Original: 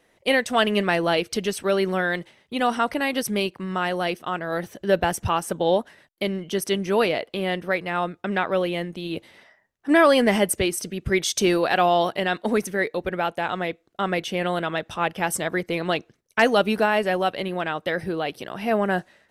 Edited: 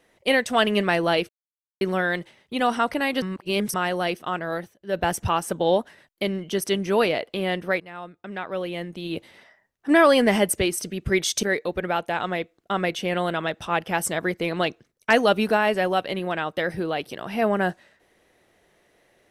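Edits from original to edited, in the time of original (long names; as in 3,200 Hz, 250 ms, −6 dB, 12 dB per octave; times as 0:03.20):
0:01.29–0:01.81: silence
0:03.22–0:03.74: reverse
0:04.49–0:05.08: duck −21.5 dB, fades 0.26 s
0:07.80–0:09.13: fade in quadratic, from −13 dB
0:11.43–0:12.72: remove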